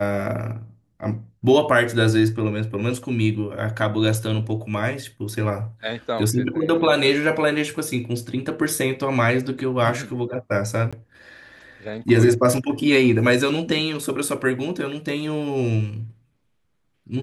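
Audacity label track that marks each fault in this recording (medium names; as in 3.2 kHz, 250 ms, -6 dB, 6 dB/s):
10.910000	10.930000	dropout 16 ms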